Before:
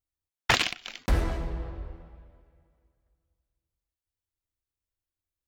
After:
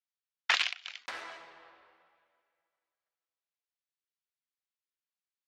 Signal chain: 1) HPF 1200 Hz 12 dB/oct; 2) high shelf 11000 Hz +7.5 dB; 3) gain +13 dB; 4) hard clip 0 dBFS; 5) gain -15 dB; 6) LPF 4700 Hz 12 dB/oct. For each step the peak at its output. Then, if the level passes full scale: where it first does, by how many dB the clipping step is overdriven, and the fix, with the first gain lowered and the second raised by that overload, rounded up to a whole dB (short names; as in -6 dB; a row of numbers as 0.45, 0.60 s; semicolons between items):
-10.5, -9.5, +3.5, 0.0, -15.0, -15.0 dBFS; step 3, 3.5 dB; step 3 +9 dB, step 5 -11 dB